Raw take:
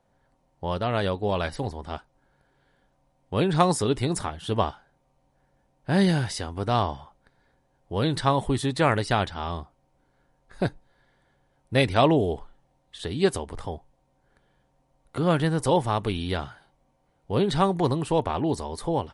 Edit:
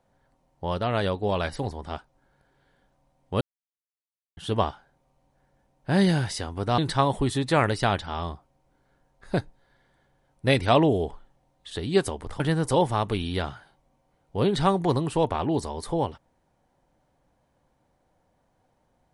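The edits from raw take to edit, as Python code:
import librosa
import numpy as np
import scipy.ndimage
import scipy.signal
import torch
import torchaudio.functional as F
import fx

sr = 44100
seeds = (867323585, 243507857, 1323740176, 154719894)

y = fx.edit(x, sr, fx.silence(start_s=3.41, length_s=0.96),
    fx.cut(start_s=6.78, length_s=1.28),
    fx.cut(start_s=13.68, length_s=1.67), tone=tone)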